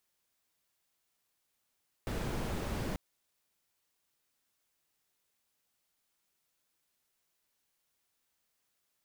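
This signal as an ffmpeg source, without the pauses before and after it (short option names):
-f lavfi -i "anoisesrc=c=brown:a=0.0785:d=0.89:r=44100:seed=1"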